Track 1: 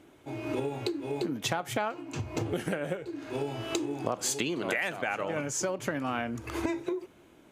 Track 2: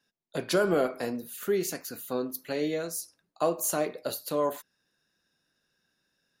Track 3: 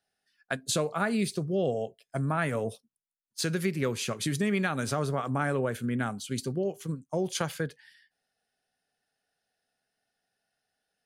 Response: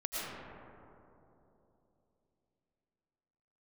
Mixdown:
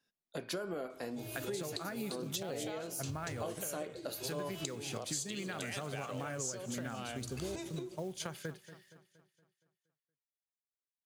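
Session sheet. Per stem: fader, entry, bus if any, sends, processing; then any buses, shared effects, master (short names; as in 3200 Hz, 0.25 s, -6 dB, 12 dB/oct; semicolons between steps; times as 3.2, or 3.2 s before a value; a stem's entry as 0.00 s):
-3.0 dB, 0.90 s, no send, echo send -23 dB, ten-band EQ 250 Hz -12 dB, 1000 Hz -8 dB, 2000 Hz -8 dB, 4000 Hz +7 dB, 8000 Hz +7 dB
-6.0 dB, 0.00 s, no send, no echo send, dry
-7.5 dB, 0.85 s, no send, echo send -16.5 dB, companded quantiser 6-bit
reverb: off
echo: feedback echo 0.234 s, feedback 49%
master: compressor 6:1, threshold -36 dBFS, peak gain reduction 12.5 dB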